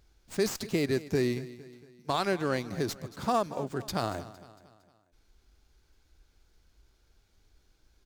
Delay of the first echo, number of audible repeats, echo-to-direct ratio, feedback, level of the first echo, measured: 229 ms, 3, −16.0 dB, 49%, −17.0 dB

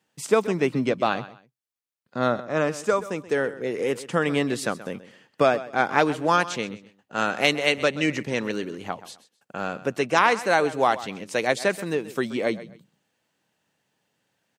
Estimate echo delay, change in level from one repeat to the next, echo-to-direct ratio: 129 ms, −12.0 dB, −16.0 dB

